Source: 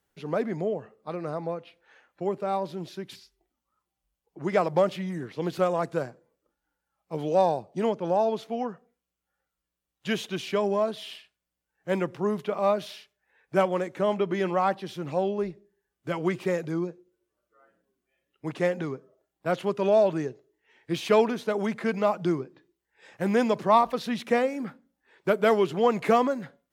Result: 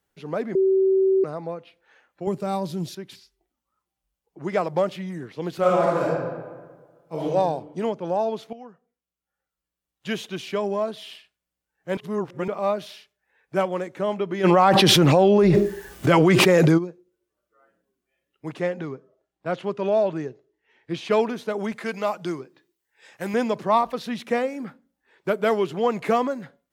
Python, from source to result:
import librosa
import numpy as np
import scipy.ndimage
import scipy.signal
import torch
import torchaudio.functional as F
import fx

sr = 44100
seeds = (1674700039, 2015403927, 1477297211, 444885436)

y = fx.bass_treble(x, sr, bass_db=12, treble_db=13, at=(2.27, 2.95))
y = fx.reverb_throw(y, sr, start_s=5.59, length_s=1.64, rt60_s=1.5, drr_db=-6.0)
y = fx.env_flatten(y, sr, amount_pct=100, at=(14.43, 16.77), fade=0.02)
y = fx.air_absorb(y, sr, metres=66.0, at=(18.6, 21.11))
y = fx.tilt_eq(y, sr, slope=2.0, at=(21.72, 23.34))
y = fx.edit(y, sr, fx.bleep(start_s=0.55, length_s=0.69, hz=383.0, db=-15.5),
    fx.fade_in_from(start_s=8.53, length_s=1.55, floor_db=-13.5),
    fx.reverse_span(start_s=11.97, length_s=0.51), tone=tone)